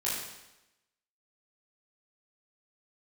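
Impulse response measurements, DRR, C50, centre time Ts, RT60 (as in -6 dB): -8.5 dB, 0.5 dB, 69 ms, 0.95 s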